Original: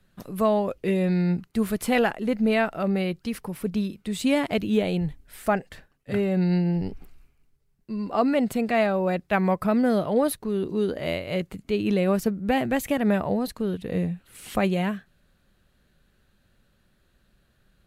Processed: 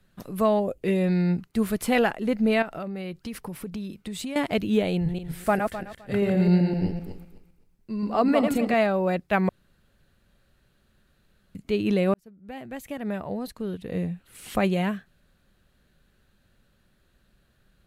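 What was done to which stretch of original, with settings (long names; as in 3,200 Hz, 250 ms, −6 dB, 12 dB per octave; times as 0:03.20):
0:00.60–0:00.82: gain on a spectral selection 800–6,400 Hz −9 dB
0:02.62–0:04.36: downward compressor, threshold −30 dBFS
0:04.93–0:08.74: feedback delay that plays each chunk backwards 129 ms, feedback 41%, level −4.5 dB
0:09.49–0:11.55: fill with room tone
0:12.14–0:14.64: fade in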